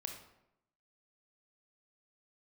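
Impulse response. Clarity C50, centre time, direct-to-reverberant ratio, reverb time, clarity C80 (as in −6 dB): 5.5 dB, 25 ms, 3.5 dB, 0.85 s, 9.0 dB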